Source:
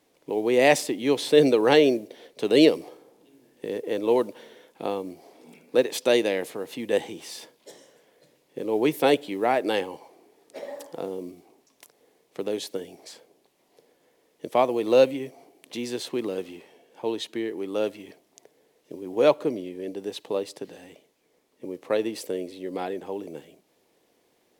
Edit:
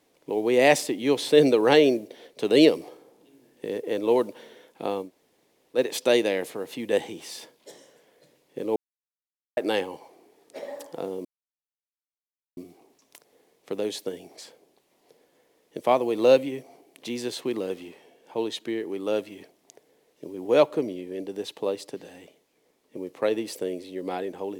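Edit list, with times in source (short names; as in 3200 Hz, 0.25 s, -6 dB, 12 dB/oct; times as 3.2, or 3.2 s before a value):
5.06–5.77 room tone, crossfade 0.10 s
8.76–9.57 mute
11.25 insert silence 1.32 s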